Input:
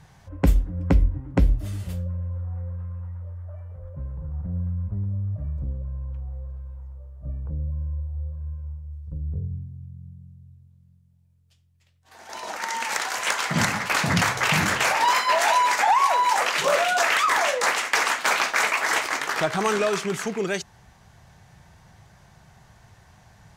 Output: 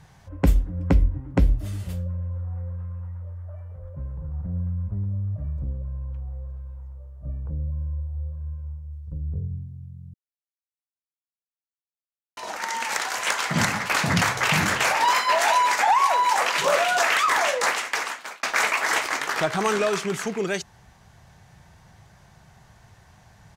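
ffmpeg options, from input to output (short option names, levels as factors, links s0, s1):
-filter_complex "[0:a]asplit=2[s0][s1];[s1]afade=t=in:st=16.03:d=0.01,afade=t=out:st=16.64:d=0.01,aecho=0:1:350|700|1050|1400|1750|2100:0.223872|0.12313|0.0677213|0.0372467|0.0204857|0.0112671[s2];[s0][s2]amix=inputs=2:normalize=0,asplit=4[s3][s4][s5][s6];[s3]atrim=end=10.14,asetpts=PTS-STARTPTS,afade=t=out:st=10.136:d=0.004:c=hsin[s7];[s4]atrim=start=10.14:end=12.37,asetpts=PTS-STARTPTS,volume=0[s8];[s5]atrim=start=12.37:end=18.43,asetpts=PTS-STARTPTS,afade=t=in:d=0.004:c=hsin,afade=t=out:st=5.25:d=0.81[s9];[s6]atrim=start=18.43,asetpts=PTS-STARTPTS,afade=t=in:d=0.004:c=hsin[s10];[s7][s8][s9][s10]concat=n=4:v=0:a=1"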